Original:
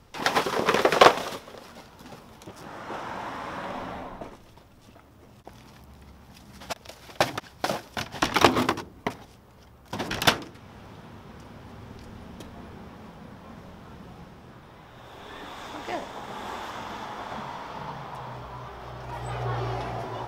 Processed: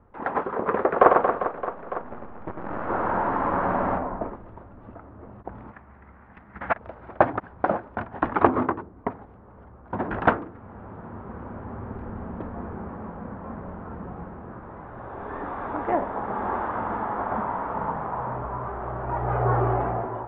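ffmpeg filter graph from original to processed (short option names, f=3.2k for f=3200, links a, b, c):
-filter_complex "[0:a]asettb=1/sr,asplit=3[a][b][c];[a]atrim=end=0.924[d];[b]atrim=start=0.92:end=3.98,asetpts=PTS-STARTPTS,afade=t=in:d=0.004:c=qsin,afade=t=out:st=3.056:d=0.004:c=qsin,lowpass=4.2k,acrusher=bits=7:dc=4:mix=0:aa=0.000001,aecho=1:1:100|230|399|618.7|904.3:0.631|0.398|0.251|0.158|0.1,atrim=end_sample=134946[e];[c]atrim=start=3.976[f];[d][e]acrossfade=d=0.004:c1=hsin:c2=qsin[g];[g][f]acrossfade=d=0.004:c1=qsin:c2=hsin,asettb=1/sr,asplit=3[h][i][j];[h]atrim=end=5.714[k];[i]atrim=start=5.71:end=6.78,asetpts=PTS-STARTPTS,afade=t=in:d=0.004:c=qsin,afade=t=out:st=1.066:d=0.004:c=qsin,equalizer=f=2k:t=o:w=1.4:g=14.5,agate=range=-10dB:threshold=-43dB:ratio=16:release=100:detection=peak[l];[j]atrim=start=6.776[m];[k][l]acrossfade=d=0.004:c1=hsin:c2=qsin[n];[n][m]acrossfade=d=0.004:c1=qsin:c2=hsin,lowpass=f=1.5k:w=0.5412,lowpass=f=1.5k:w=1.3066,equalizer=f=140:w=6.6:g=-11.5,dynaudnorm=f=280:g=5:m=10dB,volume=-1dB"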